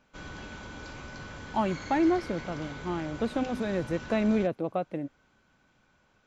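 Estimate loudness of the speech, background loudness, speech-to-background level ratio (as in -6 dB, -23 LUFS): -30.0 LUFS, -42.0 LUFS, 12.0 dB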